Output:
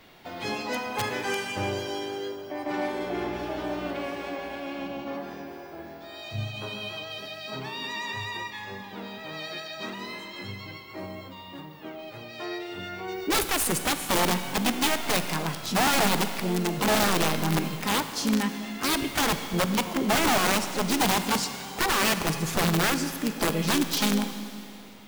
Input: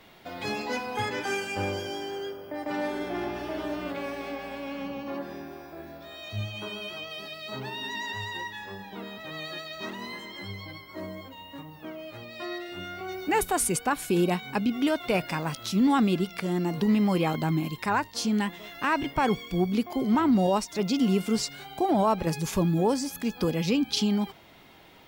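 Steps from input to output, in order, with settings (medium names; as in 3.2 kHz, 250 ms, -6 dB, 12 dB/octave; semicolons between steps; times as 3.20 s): integer overflow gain 19 dB; harmony voices +4 st -9 dB; Schroeder reverb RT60 2.6 s, combs from 33 ms, DRR 9 dB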